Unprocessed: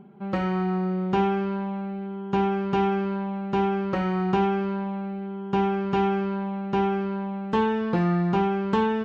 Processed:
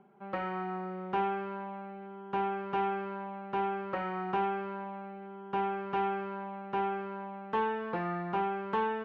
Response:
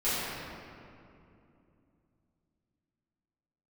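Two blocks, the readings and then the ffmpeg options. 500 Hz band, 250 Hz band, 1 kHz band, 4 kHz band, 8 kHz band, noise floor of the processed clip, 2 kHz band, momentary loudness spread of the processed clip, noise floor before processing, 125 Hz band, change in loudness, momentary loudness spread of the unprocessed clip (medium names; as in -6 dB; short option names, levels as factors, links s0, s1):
-9.0 dB, -15.0 dB, -4.5 dB, -10.0 dB, no reading, -45 dBFS, -5.0 dB, 9 LU, -34 dBFS, -16.0 dB, -9.0 dB, 7 LU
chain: -filter_complex "[0:a]acrossover=split=440 2900:gain=0.224 1 0.141[s0][s1][s2];[s0][s1][s2]amix=inputs=3:normalize=0,volume=0.631"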